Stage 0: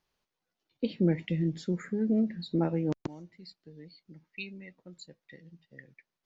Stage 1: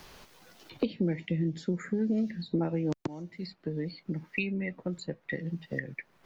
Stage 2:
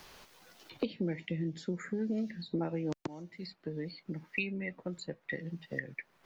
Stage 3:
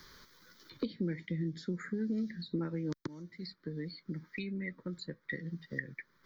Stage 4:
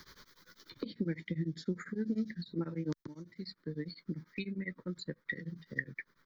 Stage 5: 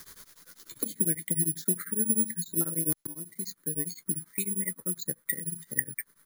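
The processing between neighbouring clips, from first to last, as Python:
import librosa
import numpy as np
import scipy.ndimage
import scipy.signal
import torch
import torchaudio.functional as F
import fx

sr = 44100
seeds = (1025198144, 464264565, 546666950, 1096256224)

y1 = fx.band_squash(x, sr, depth_pct=100)
y2 = fx.low_shelf(y1, sr, hz=370.0, db=-5.5)
y2 = y2 * 10.0 ** (-1.5 / 20.0)
y3 = fx.fixed_phaser(y2, sr, hz=2700.0, stages=6)
y3 = y3 * 10.0 ** (1.0 / 20.0)
y4 = y3 * np.abs(np.cos(np.pi * 10.0 * np.arange(len(y3)) / sr))
y4 = y4 * 10.0 ** (2.5 / 20.0)
y5 = (np.kron(y4[::4], np.eye(4)[0]) * 4)[:len(y4)]
y5 = y5 * 10.0 ** (1.5 / 20.0)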